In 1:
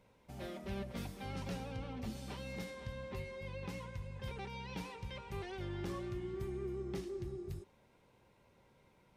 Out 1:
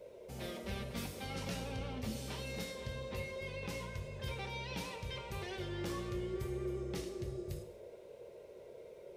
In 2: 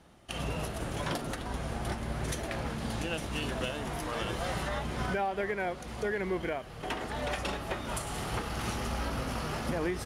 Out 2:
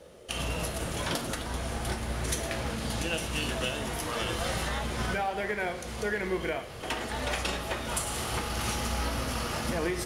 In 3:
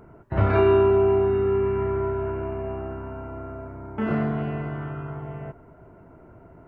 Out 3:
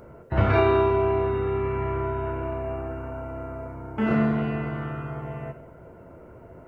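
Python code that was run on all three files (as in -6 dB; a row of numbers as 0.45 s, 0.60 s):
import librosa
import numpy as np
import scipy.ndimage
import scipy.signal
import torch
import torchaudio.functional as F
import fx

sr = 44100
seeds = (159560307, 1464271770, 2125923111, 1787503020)

y = fx.dmg_noise_band(x, sr, seeds[0], low_hz=370.0, high_hz=600.0, level_db=-54.0)
y = fx.high_shelf(y, sr, hz=2600.0, db=7.5)
y = fx.rev_double_slope(y, sr, seeds[1], early_s=0.63, late_s=2.1, knee_db=-18, drr_db=6.0)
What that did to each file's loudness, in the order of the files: +2.0 LU, +3.0 LU, -2.5 LU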